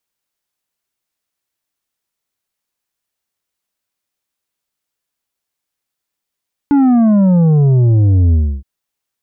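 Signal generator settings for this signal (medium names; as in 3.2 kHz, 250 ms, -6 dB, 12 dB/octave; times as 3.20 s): sub drop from 290 Hz, over 1.92 s, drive 7 dB, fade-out 0.30 s, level -8 dB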